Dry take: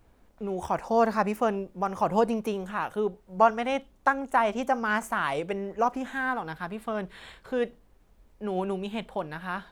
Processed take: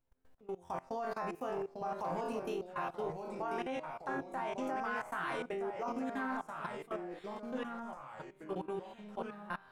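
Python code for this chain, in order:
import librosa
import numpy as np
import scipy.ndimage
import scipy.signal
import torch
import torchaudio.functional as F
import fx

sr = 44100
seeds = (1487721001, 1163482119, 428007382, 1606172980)

y = fx.resonator_bank(x, sr, root=41, chord='fifth', decay_s=0.38)
y = fx.level_steps(y, sr, step_db=22)
y = fx.echo_pitch(y, sr, ms=737, semitones=-2, count=2, db_per_echo=-6.0)
y = y * 10.0 ** (6.5 / 20.0)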